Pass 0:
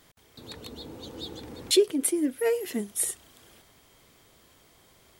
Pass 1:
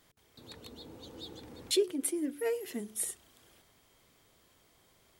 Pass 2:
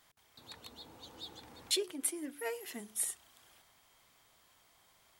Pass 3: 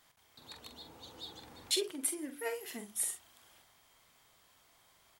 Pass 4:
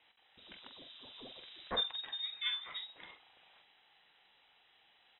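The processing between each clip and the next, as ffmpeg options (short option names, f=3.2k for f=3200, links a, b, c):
-af "bandreject=f=72.19:t=h:w=4,bandreject=f=144.38:t=h:w=4,bandreject=f=216.57:t=h:w=4,bandreject=f=288.76:t=h:w=4,bandreject=f=360.95:t=h:w=4,bandreject=f=433.14:t=h:w=4,volume=-7dB"
-af "lowshelf=f=600:t=q:w=1.5:g=-7"
-filter_complex "[0:a]asplit=2[a][b];[b]adelay=45,volume=-8dB[c];[a][c]amix=inputs=2:normalize=0"
-af "lowpass=f=3.4k:t=q:w=0.5098,lowpass=f=3.4k:t=q:w=0.6013,lowpass=f=3.4k:t=q:w=0.9,lowpass=f=3.4k:t=q:w=2.563,afreqshift=-4000,volume=1dB"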